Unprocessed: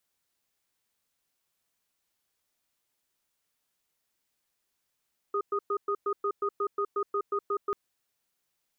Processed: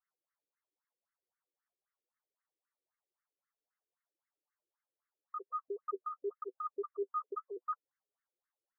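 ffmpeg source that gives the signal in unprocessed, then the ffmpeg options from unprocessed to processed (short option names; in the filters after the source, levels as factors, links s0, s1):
-f lavfi -i "aevalsrc='0.0376*(sin(2*PI*404*t)+sin(2*PI*1240*t))*clip(min(mod(t,0.18),0.07-mod(t,0.18))/0.005,0,1)':d=2.39:s=44100"
-af "flanger=delay=6.5:depth=5.3:regen=26:speed=0.9:shape=triangular,afftfilt=real='re*between(b*sr/1024,370*pow(1600/370,0.5+0.5*sin(2*PI*3.8*pts/sr))/1.41,370*pow(1600/370,0.5+0.5*sin(2*PI*3.8*pts/sr))*1.41)':imag='im*between(b*sr/1024,370*pow(1600/370,0.5+0.5*sin(2*PI*3.8*pts/sr))/1.41,370*pow(1600/370,0.5+0.5*sin(2*PI*3.8*pts/sr))*1.41)':win_size=1024:overlap=0.75"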